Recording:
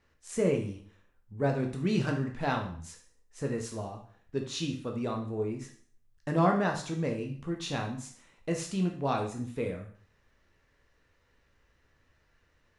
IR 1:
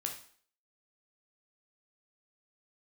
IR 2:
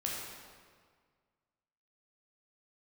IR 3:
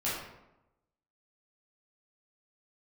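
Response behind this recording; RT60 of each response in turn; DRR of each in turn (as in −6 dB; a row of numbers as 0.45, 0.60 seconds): 1; 0.50, 1.8, 0.90 seconds; 1.5, −3.5, −9.0 decibels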